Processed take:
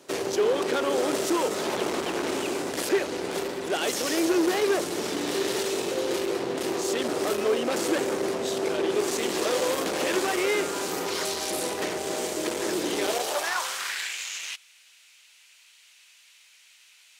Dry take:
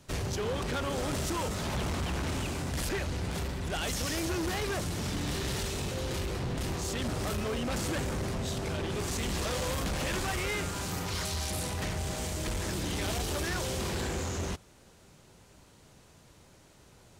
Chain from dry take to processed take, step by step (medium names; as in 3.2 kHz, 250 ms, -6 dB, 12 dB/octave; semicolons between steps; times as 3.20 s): high-pass sweep 370 Hz -> 2.5 kHz, 13.00–14.14 s; trim +5 dB